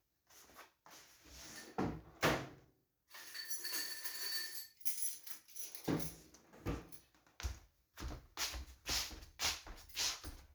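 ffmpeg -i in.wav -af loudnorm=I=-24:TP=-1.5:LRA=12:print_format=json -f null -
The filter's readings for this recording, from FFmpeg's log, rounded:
"input_i" : "-41.3",
"input_tp" : "-19.6",
"input_lra" : "4.1",
"input_thresh" : "-52.3",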